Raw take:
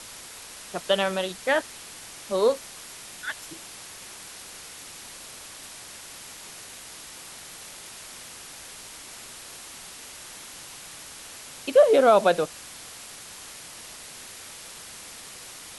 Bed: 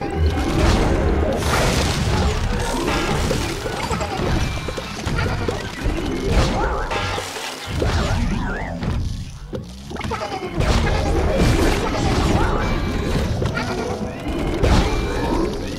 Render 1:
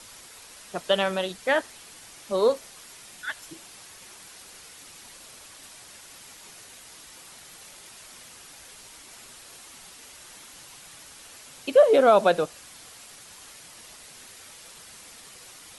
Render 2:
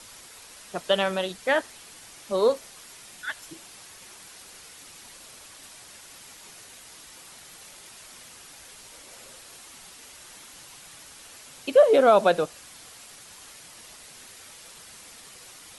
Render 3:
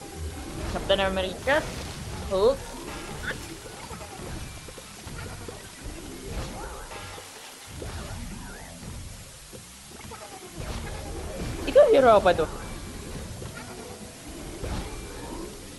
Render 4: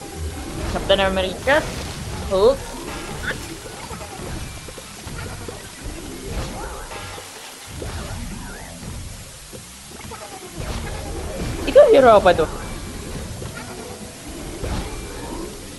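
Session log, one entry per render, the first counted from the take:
noise reduction 6 dB, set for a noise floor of -43 dBFS
8.90–9.40 s: peaking EQ 530 Hz +10.5 dB 0.38 oct
add bed -17 dB
trim +6.5 dB; peak limiter -1 dBFS, peak gain reduction 1.5 dB

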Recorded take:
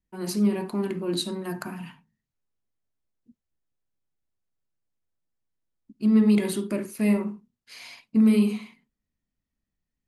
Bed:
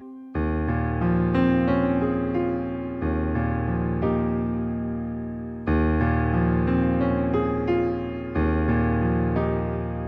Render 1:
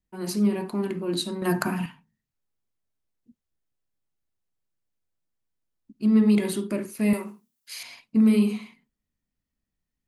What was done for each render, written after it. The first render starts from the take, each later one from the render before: 1.42–1.86 s: gain +8.5 dB; 7.13–7.83 s: RIAA curve recording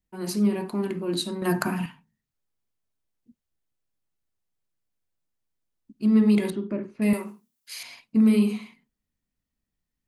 6.50–7.02 s: tape spacing loss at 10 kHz 38 dB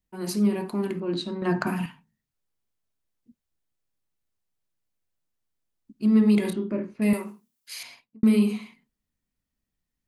1.00–1.67 s: distance through air 140 m; 6.42–6.94 s: doubling 28 ms -6.5 dB; 7.82–8.23 s: studio fade out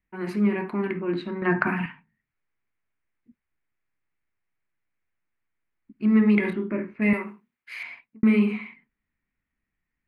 FFT filter 230 Hz 0 dB, 350 Hz +2 dB, 540 Hz -2 dB, 1.2 kHz +5 dB, 2.2 kHz +11 dB, 3.2 kHz -5 dB, 5.9 kHz -19 dB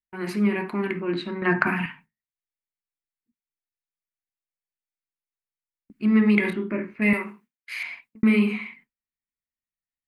gate with hold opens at -43 dBFS; treble shelf 2.5 kHz +9.5 dB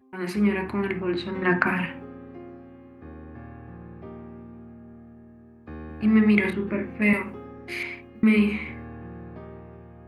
add bed -17.5 dB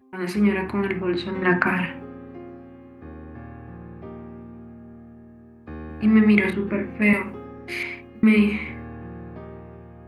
trim +2.5 dB; peak limiter -2 dBFS, peak gain reduction 1.5 dB

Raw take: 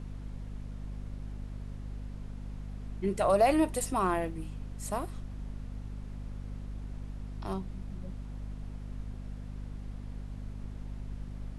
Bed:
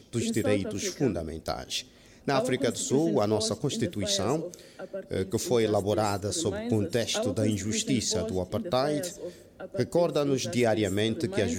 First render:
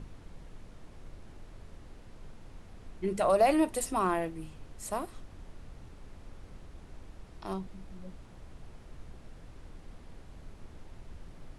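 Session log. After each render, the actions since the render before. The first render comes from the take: hum notches 50/100/150/200/250 Hz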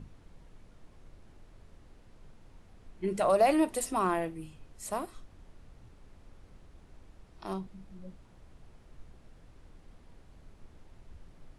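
noise print and reduce 6 dB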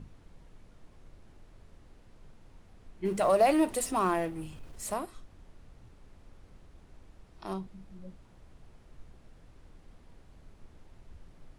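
3.05–4.94 s: companding laws mixed up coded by mu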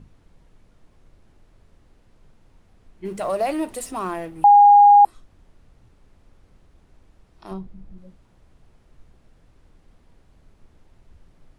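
4.44–5.05 s: bleep 818 Hz -7 dBFS; 7.51–7.98 s: tilt EQ -2 dB/octave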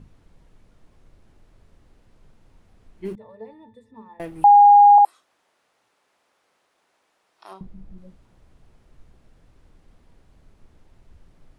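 3.15–4.20 s: pitch-class resonator A, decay 0.21 s; 4.98–7.61 s: high-pass 690 Hz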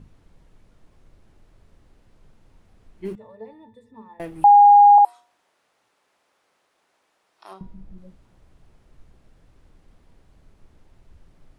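de-hum 239.5 Hz, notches 34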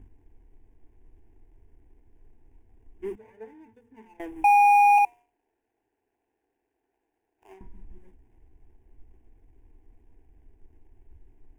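median filter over 41 samples; static phaser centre 850 Hz, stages 8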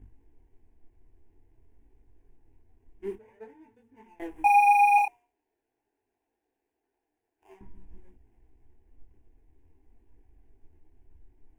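in parallel at -10.5 dB: crossover distortion -43.5 dBFS; on the sum: detune thickener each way 17 cents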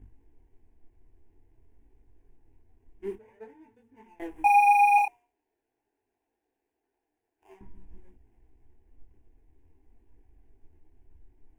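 no audible change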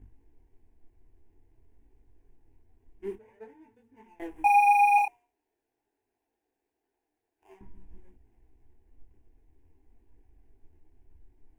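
trim -1 dB

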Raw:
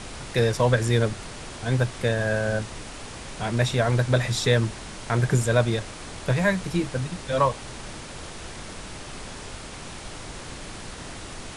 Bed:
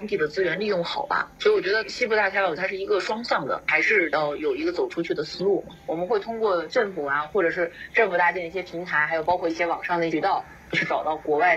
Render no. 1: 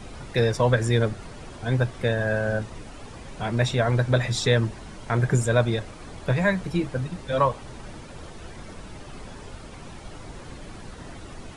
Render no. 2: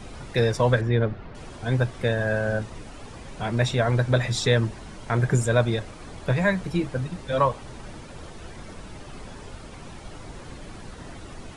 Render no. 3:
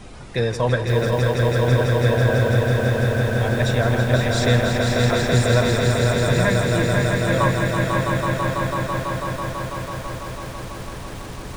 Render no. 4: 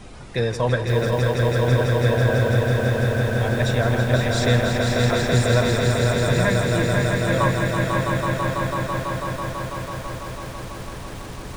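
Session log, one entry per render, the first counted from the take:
noise reduction 10 dB, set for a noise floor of -39 dBFS
0.81–1.35 s: distance through air 310 m
echo with a slow build-up 165 ms, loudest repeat 5, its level -5 dB; bit-crushed delay 528 ms, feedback 35%, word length 6-bit, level -6.5 dB
trim -1 dB

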